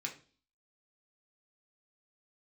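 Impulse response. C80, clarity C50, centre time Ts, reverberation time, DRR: 17.0 dB, 12.0 dB, 14 ms, 0.40 s, −0.5 dB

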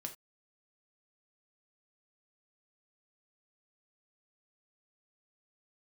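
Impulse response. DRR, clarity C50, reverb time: 3.0 dB, 12.5 dB, non-exponential decay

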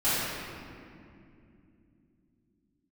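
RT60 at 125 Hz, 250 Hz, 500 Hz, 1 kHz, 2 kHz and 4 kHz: 4.4, 4.7, 3.1, 2.2, 2.1, 1.4 seconds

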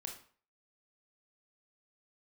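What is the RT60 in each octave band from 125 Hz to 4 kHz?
0.45, 0.45, 0.45, 0.45, 0.40, 0.35 seconds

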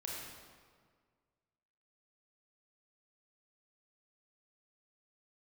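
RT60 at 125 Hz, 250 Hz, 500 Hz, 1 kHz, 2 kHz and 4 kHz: 2.0, 1.9, 1.8, 1.7, 1.5, 1.2 seconds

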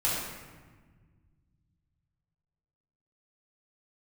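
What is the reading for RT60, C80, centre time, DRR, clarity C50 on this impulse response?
1.4 s, 2.0 dB, 83 ms, −8.0 dB, −0.5 dB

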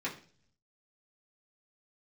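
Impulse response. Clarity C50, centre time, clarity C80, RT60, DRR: 11.0 dB, 17 ms, 16.0 dB, 0.45 s, −7.0 dB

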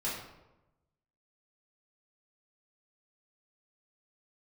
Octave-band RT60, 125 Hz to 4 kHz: 1.3, 1.1, 1.0, 0.95, 0.75, 0.60 seconds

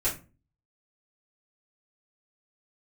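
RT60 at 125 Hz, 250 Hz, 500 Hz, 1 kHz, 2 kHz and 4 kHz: 0.55, 0.50, 0.35, 0.30, 0.25, 0.20 seconds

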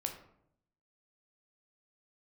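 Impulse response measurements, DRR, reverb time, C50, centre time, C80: 3.5 dB, 0.70 s, 8.5 dB, 18 ms, 11.5 dB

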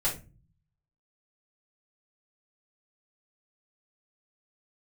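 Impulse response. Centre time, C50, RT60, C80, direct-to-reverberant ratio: 20 ms, 9.5 dB, 0.30 s, 16.0 dB, −9.0 dB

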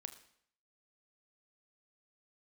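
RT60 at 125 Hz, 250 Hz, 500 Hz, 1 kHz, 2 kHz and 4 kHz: 0.65, 0.65, 0.65, 0.65, 0.65, 0.60 seconds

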